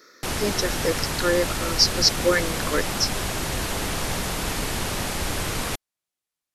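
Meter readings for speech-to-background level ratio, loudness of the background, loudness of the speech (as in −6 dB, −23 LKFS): 3.5 dB, −27.0 LKFS, −23.5 LKFS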